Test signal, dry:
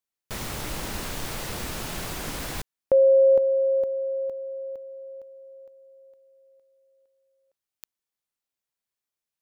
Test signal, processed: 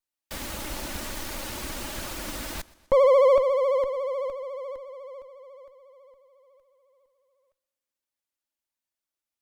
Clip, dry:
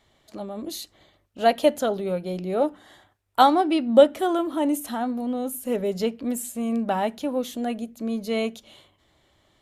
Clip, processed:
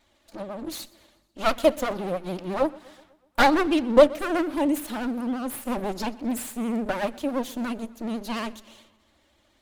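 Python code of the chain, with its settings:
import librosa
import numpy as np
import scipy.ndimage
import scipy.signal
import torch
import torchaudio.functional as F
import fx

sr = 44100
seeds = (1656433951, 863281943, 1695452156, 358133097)

y = fx.lower_of_two(x, sr, delay_ms=3.4)
y = fx.vibrato(y, sr, rate_hz=14.0, depth_cents=99.0)
y = fx.echo_warbled(y, sr, ms=124, feedback_pct=56, rate_hz=2.8, cents=68, wet_db=-22.5)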